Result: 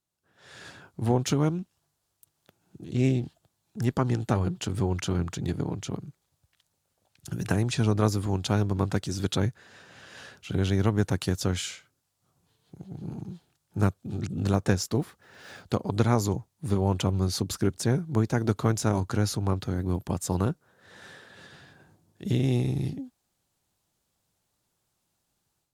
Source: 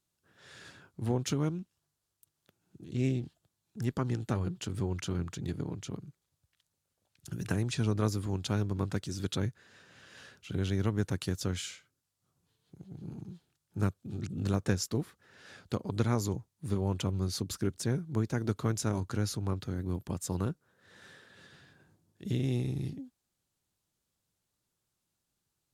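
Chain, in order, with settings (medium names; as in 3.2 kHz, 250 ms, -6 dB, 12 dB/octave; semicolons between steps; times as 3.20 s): 15.02–15.64 s: block-companded coder 5-bit; de-esser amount 65%; peaking EQ 760 Hz +5 dB 0.82 oct; level rider gain up to 10 dB; trim -4 dB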